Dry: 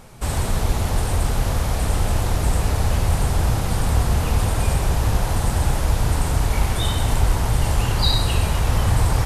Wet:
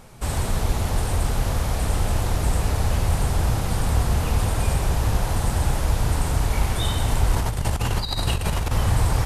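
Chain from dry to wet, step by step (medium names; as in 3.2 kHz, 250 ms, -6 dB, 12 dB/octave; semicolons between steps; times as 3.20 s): 7.33–8.72 s: compressor with a negative ratio -20 dBFS, ratio -0.5; trim -2 dB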